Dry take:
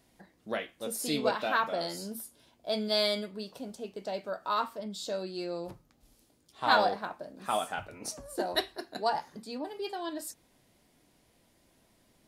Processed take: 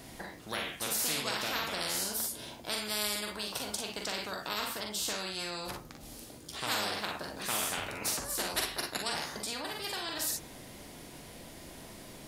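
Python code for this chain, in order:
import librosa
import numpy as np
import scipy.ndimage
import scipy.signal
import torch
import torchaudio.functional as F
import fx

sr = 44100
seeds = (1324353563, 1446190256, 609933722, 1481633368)

y = fx.room_early_taps(x, sr, ms=(43, 57), db=(-6.0, -9.0))
y = fx.spectral_comp(y, sr, ratio=4.0)
y = y * 10.0 ** (-5.5 / 20.0)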